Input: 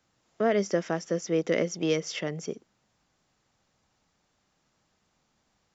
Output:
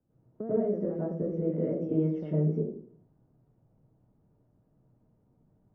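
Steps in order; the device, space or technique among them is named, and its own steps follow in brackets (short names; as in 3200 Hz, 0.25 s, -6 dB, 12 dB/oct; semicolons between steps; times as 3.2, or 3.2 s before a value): television next door (compressor 5:1, threshold -31 dBFS, peak gain reduction 11 dB; LPF 380 Hz 12 dB/oct; reverb RT60 0.50 s, pre-delay 89 ms, DRR -9 dB)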